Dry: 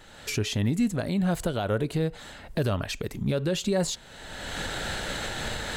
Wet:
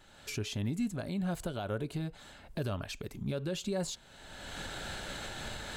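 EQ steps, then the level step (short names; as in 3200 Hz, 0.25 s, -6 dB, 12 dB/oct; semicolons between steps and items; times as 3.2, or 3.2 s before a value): notch 480 Hz, Q 12; notch 1900 Hz, Q 13; -8.5 dB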